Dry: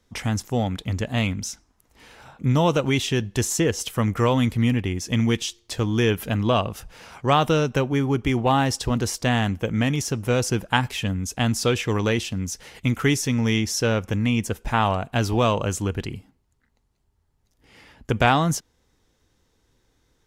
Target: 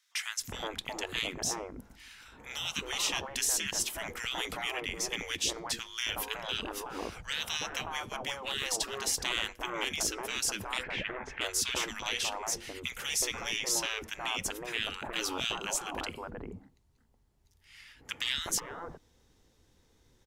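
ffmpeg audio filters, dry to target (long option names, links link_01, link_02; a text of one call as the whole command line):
ffmpeg -i in.wav -filter_complex "[0:a]asplit=3[link_01][link_02][link_03];[link_01]afade=type=out:start_time=10.82:duration=0.02[link_04];[link_02]lowpass=frequency=1900:width_type=q:width=3.2,afade=type=in:start_time=10.82:duration=0.02,afade=type=out:start_time=11.4:duration=0.02[link_05];[link_03]afade=type=in:start_time=11.4:duration=0.02[link_06];[link_04][link_05][link_06]amix=inputs=3:normalize=0,afftfilt=real='re*lt(hypot(re,im),0.126)':imag='im*lt(hypot(re,im),0.126)':win_size=1024:overlap=0.75,acrossover=split=1400[link_07][link_08];[link_07]adelay=370[link_09];[link_09][link_08]amix=inputs=2:normalize=0" out.wav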